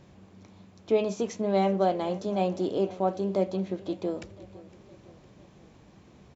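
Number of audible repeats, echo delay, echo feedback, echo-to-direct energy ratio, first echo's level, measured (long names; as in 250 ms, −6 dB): 3, 509 ms, 54%, −18.5 dB, −20.0 dB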